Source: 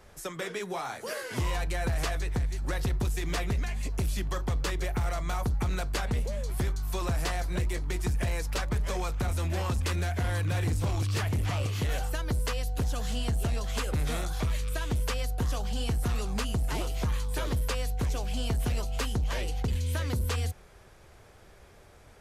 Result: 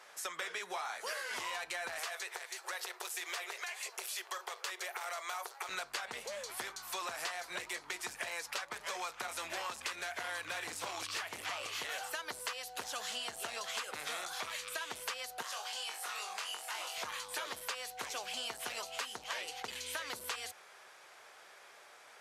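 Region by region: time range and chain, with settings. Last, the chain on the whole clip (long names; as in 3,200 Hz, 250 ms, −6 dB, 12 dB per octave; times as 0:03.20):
0:01.99–0:05.69: linear-phase brick-wall high-pass 340 Hz + high-shelf EQ 11,000 Hz +8.5 dB + downward compressor 2 to 1, threshold −38 dBFS
0:15.42–0:16.98: high-pass filter 600 Hz + downward compressor 3 to 1, threshold −40 dBFS + flutter between parallel walls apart 3.7 metres, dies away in 0.25 s
whole clip: high-pass filter 890 Hz 12 dB per octave; high-shelf EQ 11,000 Hz −9 dB; downward compressor, threshold −41 dBFS; level +4.5 dB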